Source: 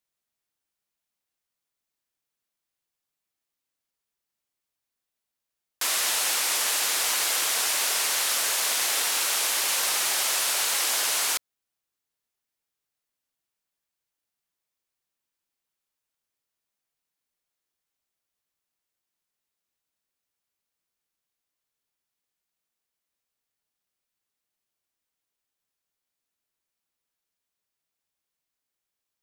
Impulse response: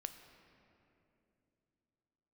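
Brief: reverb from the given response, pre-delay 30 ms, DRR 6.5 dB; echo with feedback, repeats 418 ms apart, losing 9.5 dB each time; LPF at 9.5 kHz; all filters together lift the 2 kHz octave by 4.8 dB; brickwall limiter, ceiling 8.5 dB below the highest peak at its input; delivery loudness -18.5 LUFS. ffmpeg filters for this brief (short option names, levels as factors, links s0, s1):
-filter_complex "[0:a]lowpass=9500,equalizer=f=2000:t=o:g=6,alimiter=limit=0.0944:level=0:latency=1,aecho=1:1:418|836|1254|1672:0.335|0.111|0.0365|0.012,asplit=2[s0][s1];[1:a]atrim=start_sample=2205,adelay=30[s2];[s1][s2]afir=irnorm=-1:irlink=0,volume=0.668[s3];[s0][s3]amix=inputs=2:normalize=0,volume=2.51"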